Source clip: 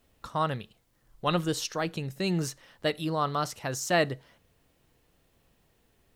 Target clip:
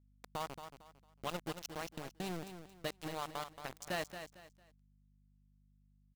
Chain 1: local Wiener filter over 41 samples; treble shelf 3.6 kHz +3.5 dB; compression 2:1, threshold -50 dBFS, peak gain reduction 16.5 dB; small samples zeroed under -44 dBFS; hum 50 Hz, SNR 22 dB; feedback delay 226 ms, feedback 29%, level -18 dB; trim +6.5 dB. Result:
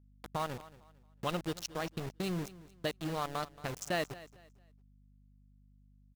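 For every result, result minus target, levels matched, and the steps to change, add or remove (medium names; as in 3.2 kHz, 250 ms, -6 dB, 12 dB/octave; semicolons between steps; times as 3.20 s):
echo-to-direct -8.5 dB; compression: peak gain reduction -5 dB
change: feedback delay 226 ms, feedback 29%, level -9.5 dB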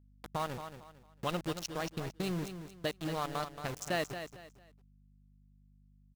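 compression: peak gain reduction -5 dB
change: compression 2:1, threshold -59.5 dBFS, peak gain reduction 21 dB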